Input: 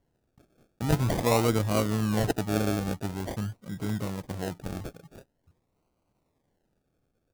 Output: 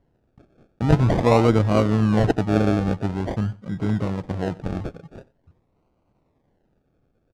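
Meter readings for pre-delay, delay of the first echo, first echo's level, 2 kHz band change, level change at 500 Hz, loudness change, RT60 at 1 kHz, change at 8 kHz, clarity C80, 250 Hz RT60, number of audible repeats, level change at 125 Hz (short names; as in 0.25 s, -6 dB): none, 91 ms, -21.0 dB, +4.5 dB, +7.5 dB, +7.5 dB, none, n/a, none, none, 1, +8.0 dB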